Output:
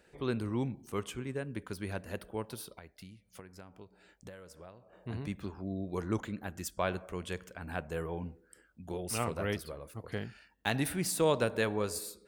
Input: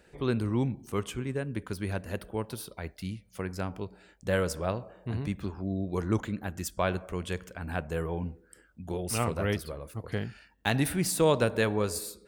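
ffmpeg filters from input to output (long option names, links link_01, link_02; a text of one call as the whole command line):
ffmpeg -i in.wav -filter_complex "[0:a]lowshelf=frequency=160:gain=-5,asettb=1/sr,asplit=3[link_01][link_02][link_03];[link_01]atrim=end=2.764[link_04];[link_02]atrim=start=2.76:end=4.93,asetpts=PTS-STARTPTS,afade=type=in:duration=0.004:curve=qsin,afade=type=out:start_time=2.166:duration=0.004:curve=qsin,acompressor=threshold=-43dB:ratio=20[link_05];[link_03]atrim=start=4.926[link_06];[link_04][link_05]acrossfade=duration=0.004:curve1=hsin:curve2=qsin[link_07];[link_07][link_06]acrossfade=duration=0.004:curve1=qsin:curve2=hsin,volume=-3.5dB" out.wav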